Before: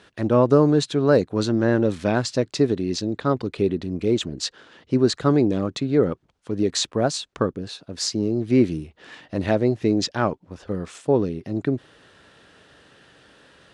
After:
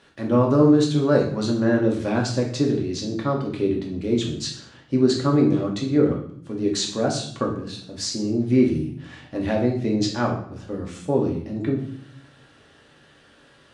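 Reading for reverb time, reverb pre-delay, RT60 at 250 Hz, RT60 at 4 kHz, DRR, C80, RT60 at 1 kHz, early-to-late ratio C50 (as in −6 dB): 0.65 s, 3 ms, 1.0 s, 0.50 s, −1.5 dB, 10.5 dB, 0.60 s, 6.5 dB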